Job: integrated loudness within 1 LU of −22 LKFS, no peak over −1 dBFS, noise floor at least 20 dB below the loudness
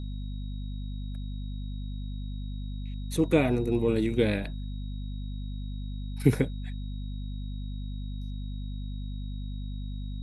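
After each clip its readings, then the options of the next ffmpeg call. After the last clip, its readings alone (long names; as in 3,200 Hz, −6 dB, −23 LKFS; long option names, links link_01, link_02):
mains hum 50 Hz; hum harmonics up to 250 Hz; level of the hum −32 dBFS; interfering tone 3,800 Hz; level of the tone −54 dBFS; integrated loudness −32.5 LKFS; sample peak −8.5 dBFS; target loudness −22.0 LKFS
→ -af "bandreject=frequency=50:width_type=h:width=4,bandreject=frequency=100:width_type=h:width=4,bandreject=frequency=150:width_type=h:width=4,bandreject=frequency=200:width_type=h:width=4,bandreject=frequency=250:width_type=h:width=4"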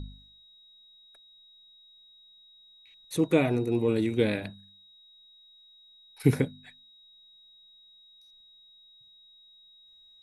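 mains hum none found; interfering tone 3,800 Hz; level of the tone −54 dBFS
→ -af "bandreject=frequency=3800:width=30"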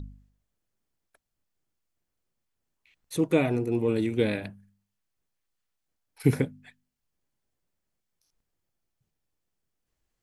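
interfering tone none found; integrated loudness −27.0 LKFS; sample peak −9.0 dBFS; target loudness −22.0 LKFS
→ -af "volume=5dB"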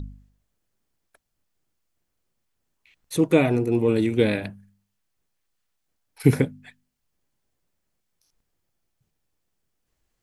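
integrated loudness −22.0 LKFS; sample peak −4.0 dBFS; background noise floor −77 dBFS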